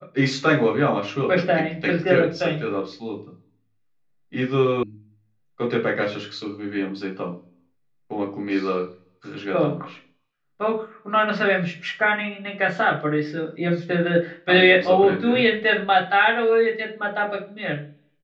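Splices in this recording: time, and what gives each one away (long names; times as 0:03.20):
0:04.83: cut off before it has died away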